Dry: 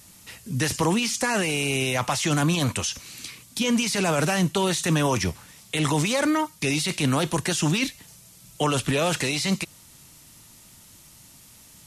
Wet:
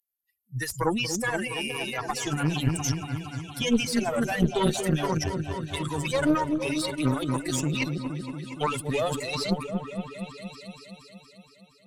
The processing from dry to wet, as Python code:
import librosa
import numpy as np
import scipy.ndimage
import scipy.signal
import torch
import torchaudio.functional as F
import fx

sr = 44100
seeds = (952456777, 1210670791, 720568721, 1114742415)

y = fx.bin_expand(x, sr, power=3.0)
y = fx.echo_opening(y, sr, ms=234, hz=400, octaves=1, feedback_pct=70, wet_db=-3)
y = fx.cheby_harmonics(y, sr, harmonics=(2,), levels_db=(-6,), full_scale_db=-15.5)
y = y * 10.0 ** (2.5 / 20.0)